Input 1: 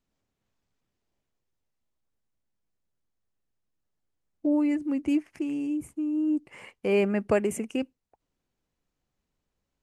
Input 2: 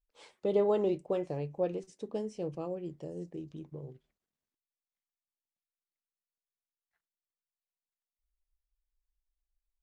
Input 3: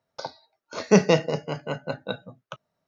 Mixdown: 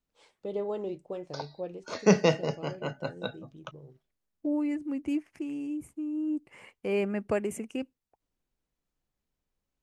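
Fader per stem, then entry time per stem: -5.0, -5.5, -4.0 dB; 0.00, 0.00, 1.15 s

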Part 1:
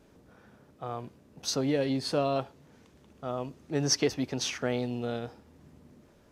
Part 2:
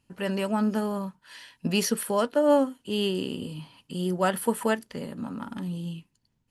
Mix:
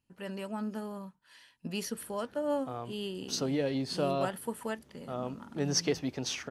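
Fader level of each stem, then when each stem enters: -3.0, -11.0 dB; 1.85, 0.00 s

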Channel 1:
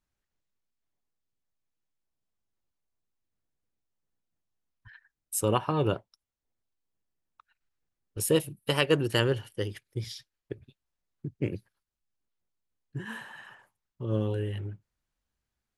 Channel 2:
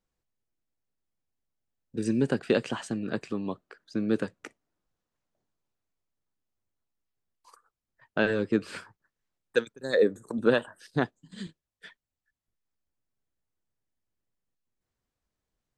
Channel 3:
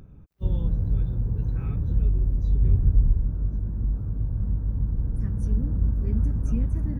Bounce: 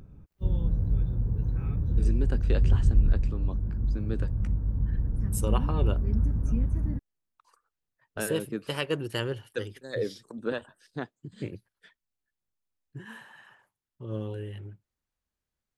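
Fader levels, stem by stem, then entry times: -5.5, -8.5, -2.0 dB; 0.00, 0.00, 0.00 s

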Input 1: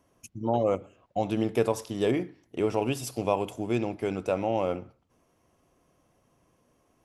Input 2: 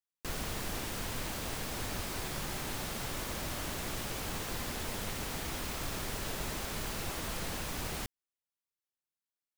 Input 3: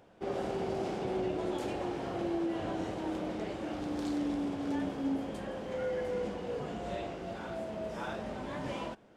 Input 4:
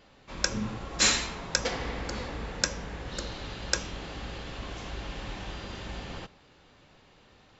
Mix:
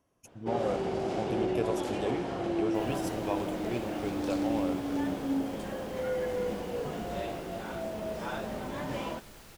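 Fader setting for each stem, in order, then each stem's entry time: -7.5 dB, -14.0 dB, +2.5 dB, off; 0.00 s, 2.50 s, 0.25 s, off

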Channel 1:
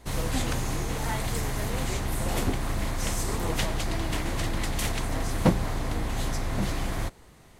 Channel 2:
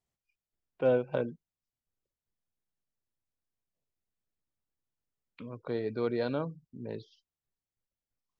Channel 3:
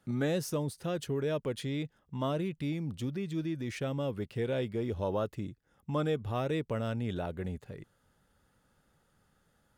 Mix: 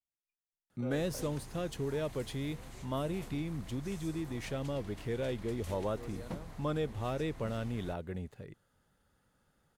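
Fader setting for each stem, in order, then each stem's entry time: -20.0, -17.5, -3.0 dB; 0.85, 0.00, 0.70 s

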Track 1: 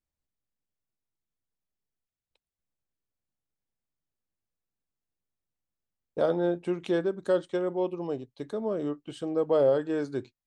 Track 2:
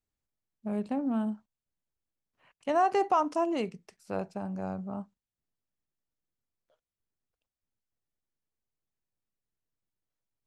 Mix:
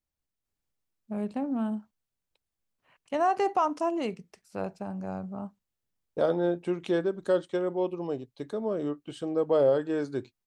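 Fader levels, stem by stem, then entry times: 0.0, 0.0 dB; 0.00, 0.45 s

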